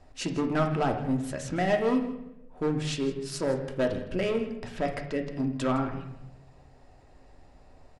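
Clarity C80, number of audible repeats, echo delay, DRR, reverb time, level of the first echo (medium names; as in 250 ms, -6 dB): 10.5 dB, 1, 161 ms, 2.5 dB, 0.90 s, -16.0 dB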